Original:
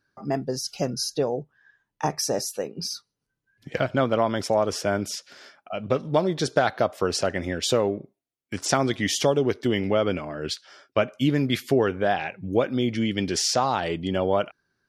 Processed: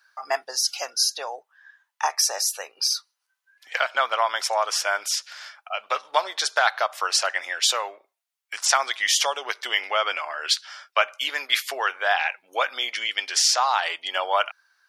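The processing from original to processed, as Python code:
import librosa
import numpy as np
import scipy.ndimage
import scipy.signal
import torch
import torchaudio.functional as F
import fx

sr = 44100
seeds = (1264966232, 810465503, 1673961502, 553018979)

p1 = scipy.signal.sosfilt(scipy.signal.butter(4, 870.0, 'highpass', fs=sr, output='sos'), x)
p2 = fx.rider(p1, sr, range_db=10, speed_s=0.5)
p3 = p1 + F.gain(torch.from_numpy(p2), -1.0).numpy()
y = F.gain(torch.from_numpy(p3), 2.0).numpy()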